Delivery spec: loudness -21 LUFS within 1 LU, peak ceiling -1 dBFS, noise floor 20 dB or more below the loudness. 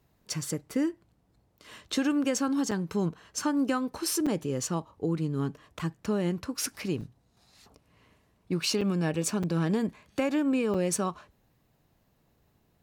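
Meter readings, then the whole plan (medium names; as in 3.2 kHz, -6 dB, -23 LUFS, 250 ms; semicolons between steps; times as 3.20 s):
dropouts 8; longest dropout 5.5 ms; loudness -30.0 LUFS; peak level -16.5 dBFS; loudness target -21.0 LUFS
-> interpolate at 1.92/2.71/4.26/5.79/7.01/8.81/9.43/10.74 s, 5.5 ms; trim +9 dB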